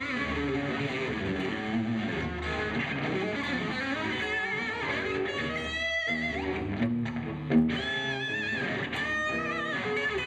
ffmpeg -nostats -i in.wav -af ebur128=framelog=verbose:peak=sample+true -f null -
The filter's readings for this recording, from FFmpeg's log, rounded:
Integrated loudness:
  I:         -30.0 LUFS
  Threshold: -40.0 LUFS
Loudness range:
  LRA:         1.6 LU
  Threshold: -50.0 LUFS
  LRA low:   -30.9 LUFS
  LRA high:  -29.2 LUFS
Sample peak:
  Peak:      -12.7 dBFS
True peak:
  Peak:      -12.7 dBFS